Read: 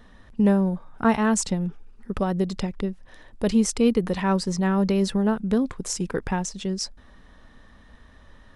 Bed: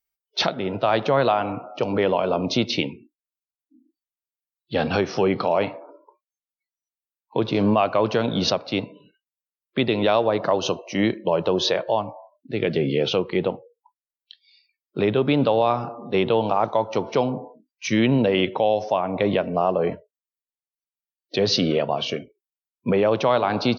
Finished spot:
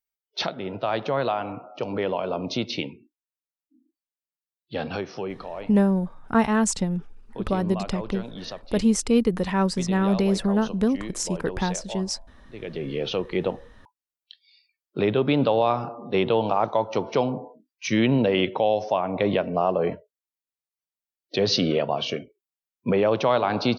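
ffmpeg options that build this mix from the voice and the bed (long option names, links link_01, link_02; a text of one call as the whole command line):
ffmpeg -i stem1.wav -i stem2.wav -filter_complex "[0:a]adelay=5300,volume=0dB[link_01];[1:a]volume=7.5dB,afade=type=out:start_time=4.58:duration=0.9:silence=0.354813,afade=type=in:start_time=12.56:duration=0.99:silence=0.223872[link_02];[link_01][link_02]amix=inputs=2:normalize=0" out.wav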